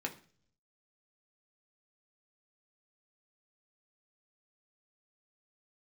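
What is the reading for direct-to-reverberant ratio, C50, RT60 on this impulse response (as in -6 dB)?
1.0 dB, 14.5 dB, 0.45 s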